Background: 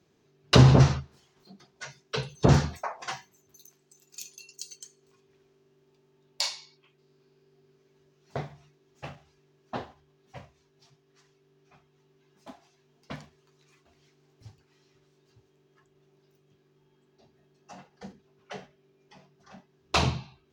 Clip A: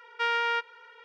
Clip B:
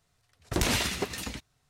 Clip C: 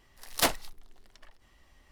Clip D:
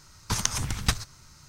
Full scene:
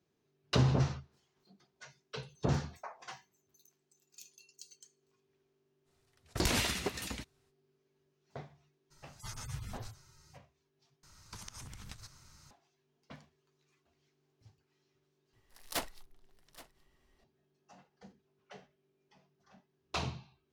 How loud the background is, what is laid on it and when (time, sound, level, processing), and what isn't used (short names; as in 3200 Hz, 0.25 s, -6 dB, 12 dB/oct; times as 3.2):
background -12 dB
5.84 add B -4.5 dB, fades 0.05 s
8.9 add D -7.5 dB, fades 0.02 s + median-filter separation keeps harmonic
11.03 replace with D -7 dB + compressor 10:1, threshold -37 dBFS
15.33 add C -11 dB + echo 0.824 s -18.5 dB
not used: A